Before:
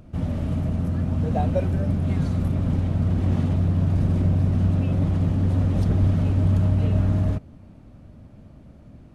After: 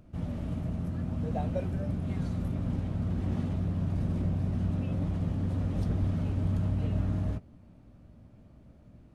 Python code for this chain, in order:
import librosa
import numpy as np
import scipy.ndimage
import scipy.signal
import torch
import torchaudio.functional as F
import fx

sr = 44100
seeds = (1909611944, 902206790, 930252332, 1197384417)

y = fx.doubler(x, sr, ms=17.0, db=-11)
y = y * librosa.db_to_amplitude(-8.5)